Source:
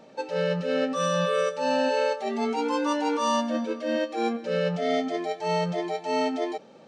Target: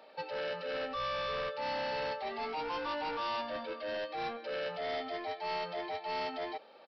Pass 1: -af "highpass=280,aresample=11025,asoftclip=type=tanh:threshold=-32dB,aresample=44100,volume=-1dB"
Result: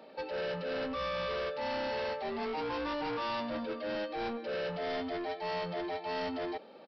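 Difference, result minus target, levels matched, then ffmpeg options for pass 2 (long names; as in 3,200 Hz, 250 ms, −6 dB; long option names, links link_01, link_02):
250 Hz band +7.0 dB
-af "highpass=630,aresample=11025,asoftclip=type=tanh:threshold=-32dB,aresample=44100,volume=-1dB"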